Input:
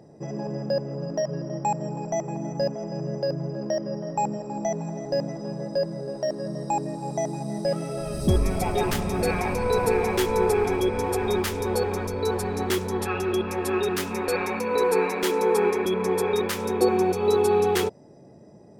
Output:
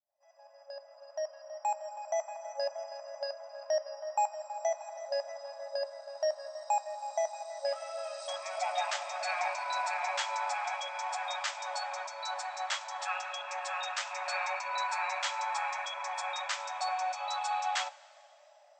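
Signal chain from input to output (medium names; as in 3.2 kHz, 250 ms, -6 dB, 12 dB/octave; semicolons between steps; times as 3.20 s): fade-in on the opening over 2.41 s; two-slope reverb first 0.2 s, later 2.7 s, from -18 dB, DRR 12.5 dB; FFT band-pass 550–8200 Hz; trim -3.5 dB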